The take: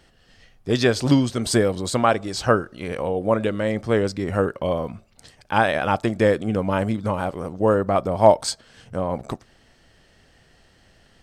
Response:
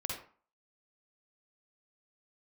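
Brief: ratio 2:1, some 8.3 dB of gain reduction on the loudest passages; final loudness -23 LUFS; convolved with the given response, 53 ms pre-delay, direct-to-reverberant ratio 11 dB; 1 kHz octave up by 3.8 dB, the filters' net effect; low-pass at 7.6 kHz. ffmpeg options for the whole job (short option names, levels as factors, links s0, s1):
-filter_complex "[0:a]lowpass=7600,equalizer=f=1000:t=o:g=5,acompressor=threshold=0.1:ratio=2,asplit=2[s0][s1];[1:a]atrim=start_sample=2205,adelay=53[s2];[s1][s2]afir=irnorm=-1:irlink=0,volume=0.224[s3];[s0][s3]amix=inputs=2:normalize=0,volume=1.12"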